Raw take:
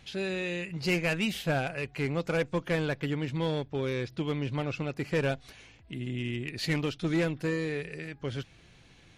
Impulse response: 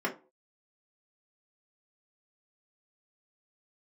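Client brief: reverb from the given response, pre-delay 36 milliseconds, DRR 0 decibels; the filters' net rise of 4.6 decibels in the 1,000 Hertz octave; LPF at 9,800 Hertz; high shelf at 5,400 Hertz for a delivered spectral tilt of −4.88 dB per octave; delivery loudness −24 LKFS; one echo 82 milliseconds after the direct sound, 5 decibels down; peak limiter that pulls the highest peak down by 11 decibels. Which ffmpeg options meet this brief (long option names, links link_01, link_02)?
-filter_complex "[0:a]lowpass=9800,equalizer=frequency=1000:width_type=o:gain=6,highshelf=frequency=5400:gain=6.5,alimiter=level_in=3dB:limit=-24dB:level=0:latency=1,volume=-3dB,aecho=1:1:82:0.562,asplit=2[link_01][link_02];[1:a]atrim=start_sample=2205,adelay=36[link_03];[link_02][link_03]afir=irnorm=-1:irlink=0,volume=-8.5dB[link_04];[link_01][link_04]amix=inputs=2:normalize=0,volume=8dB"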